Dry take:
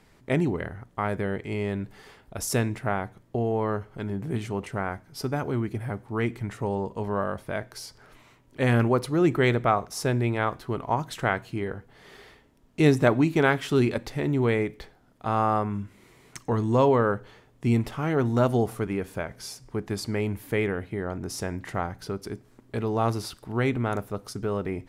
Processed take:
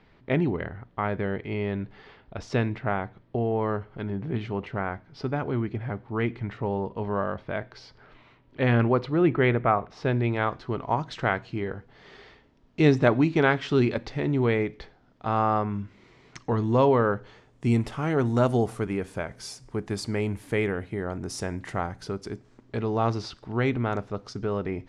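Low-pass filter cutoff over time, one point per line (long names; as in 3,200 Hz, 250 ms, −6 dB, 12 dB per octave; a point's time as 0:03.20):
low-pass filter 24 dB per octave
0:09.00 4,100 Hz
0:09.69 2,500 Hz
0:10.34 5,500 Hz
0:17.09 5,500 Hz
0:17.73 10,000 Hz
0:21.89 10,000 Hz
0:22.83 5,900 Hz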